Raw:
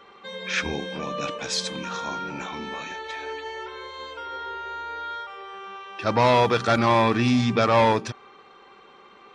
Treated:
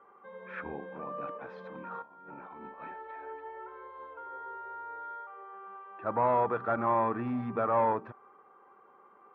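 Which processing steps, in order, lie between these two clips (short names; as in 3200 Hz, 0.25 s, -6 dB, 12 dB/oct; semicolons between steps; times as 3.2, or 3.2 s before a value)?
LPF 1300 Hz 24 dB/oct; tilt +3 dB/oct; 2.02–2.97 negative-ratio compressor -40 dBFS, ratio -0.5; gain -6 dB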